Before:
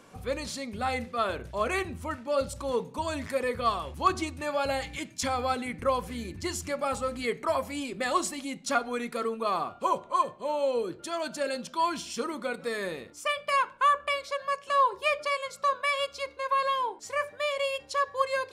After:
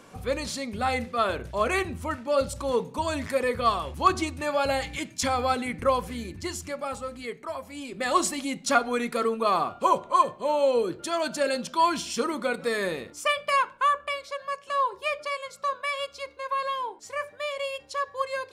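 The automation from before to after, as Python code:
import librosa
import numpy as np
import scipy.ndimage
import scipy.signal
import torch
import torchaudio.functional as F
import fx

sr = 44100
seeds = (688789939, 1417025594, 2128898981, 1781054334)

y = fx.gain(x, sr, db=fx.line((5.89, 3.5), (7.62, -7.5), (8.21, 5.0), (13.2, 5.0), (14.16, -2.0)))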